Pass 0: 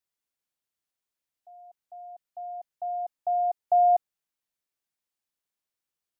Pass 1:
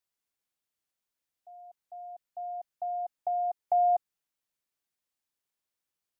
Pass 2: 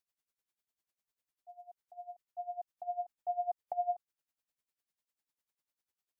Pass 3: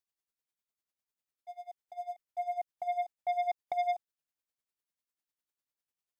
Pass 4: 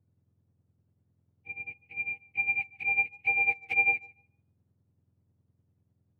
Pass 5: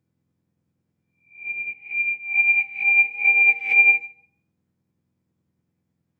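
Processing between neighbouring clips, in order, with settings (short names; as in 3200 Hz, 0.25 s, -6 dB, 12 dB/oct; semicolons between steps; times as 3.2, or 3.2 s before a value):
dynamic EQ 600 Hz, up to -8 dB, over -36 dBFS, Q 2.7
compressor, threshold -28 dBFS, peak gain reduction 6 dB; dB-linear tremolo 10 Hz, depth 18 dB; gain +1 dB
sample leveller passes 2
spectrum mirrored in octaves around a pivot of 1300 Hz; tape echo 0.147 s, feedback 20%, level -21 dB, low-pass 2500 Hz; gain +8 dB
spectral swells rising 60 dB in 0.43 s; reverb RT60 0.45 s, pre-delay 3 ms, DRR 9 dB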